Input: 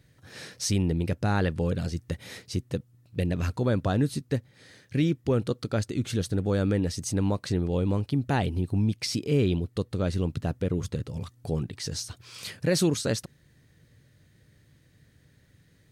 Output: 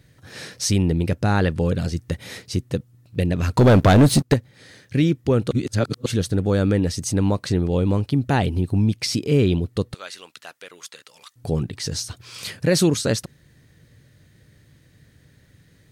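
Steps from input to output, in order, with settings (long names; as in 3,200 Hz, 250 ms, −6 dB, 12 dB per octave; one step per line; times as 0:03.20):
0:03.57–0:04.34: leveller curve on the samples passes 3
0:05.51–0:06.06: reverse
0:09.94–0:11.36: high-pass filter 1,400 Hz 12 dB per octave
level +6 dB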